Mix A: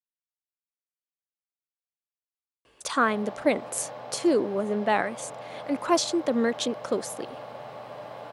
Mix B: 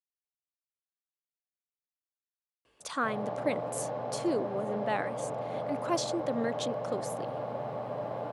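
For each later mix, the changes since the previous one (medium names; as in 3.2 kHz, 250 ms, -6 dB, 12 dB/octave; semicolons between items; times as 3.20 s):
speech -8.0 dB; background: add tilt shelf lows +8.5 dB, about 1.2 kHz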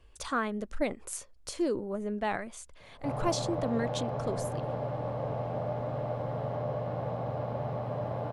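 speech: entry -2.65 s; master: remove high-pass 210 Hz 12 dB/octave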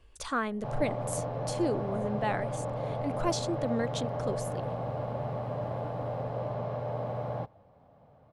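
background: entry -2.40 s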